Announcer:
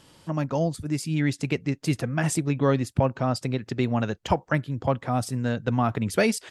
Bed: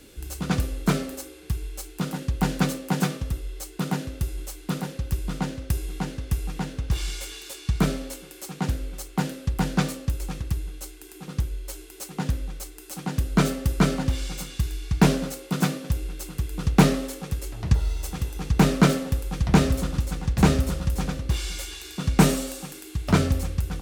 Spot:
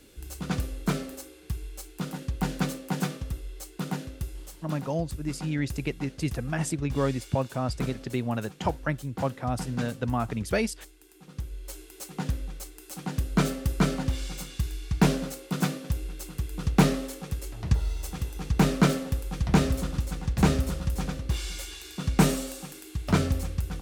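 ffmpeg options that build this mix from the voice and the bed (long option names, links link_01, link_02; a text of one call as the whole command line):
ffmpeg -i stem1.wav -i stem2.wav -filter_complex "[0:a]adelay=4350,volume=-4.5dB[link_01];[1:a]volume=3dB,afade=type=out:start_time=3.94:duration=0.93:silence=0.473151,afade=type=in:start_time=11.32:duration=0.43:silence=0.398107[link_02];[link_01][link_02]amix=inputs=2:normalize=0" out.wav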